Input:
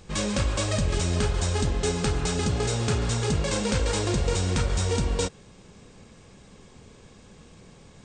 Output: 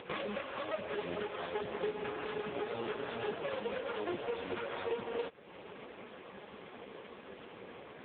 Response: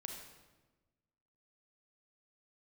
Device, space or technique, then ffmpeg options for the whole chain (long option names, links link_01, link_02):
voicemail: -af "highpass=390,lowpass=3200,acompressor=threshold=-43dB:ratio=8,volume=11dB" -ar 8000 -c:a libopencore_amrnb -b:a 4750